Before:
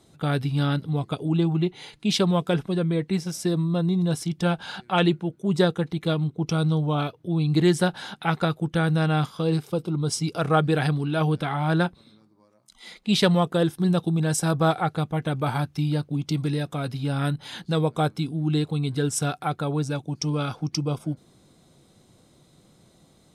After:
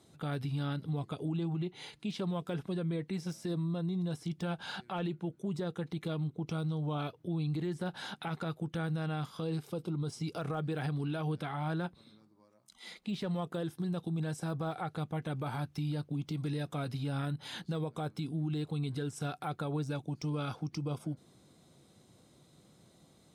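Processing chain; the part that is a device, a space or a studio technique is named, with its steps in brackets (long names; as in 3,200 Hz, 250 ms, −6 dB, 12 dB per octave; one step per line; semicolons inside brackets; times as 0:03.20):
podcast mastering chain (high-pass filter 60 Hz 12 dB per octave; de-essing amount 95%; downward compressor 3 to 1, threshold −26 dBFS, peak gain reduction 8.5 dB; brickwall limiter −23 dBFS, peak gain reduction 7 dB; level −4.5 dB; MP3 96 kbit/s 44,100 Hz)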